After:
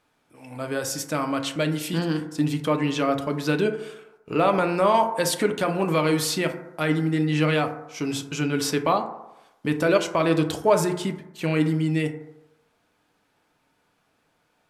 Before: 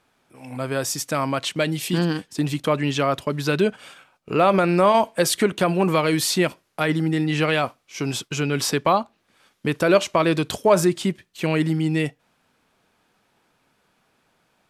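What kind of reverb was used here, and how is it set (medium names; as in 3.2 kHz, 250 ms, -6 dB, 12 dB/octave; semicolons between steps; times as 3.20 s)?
FDN reverb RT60 0.94 s, low-frequency decay 0.8×, high-frequency decay 0.3×, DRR 5 dB; trim -4 dB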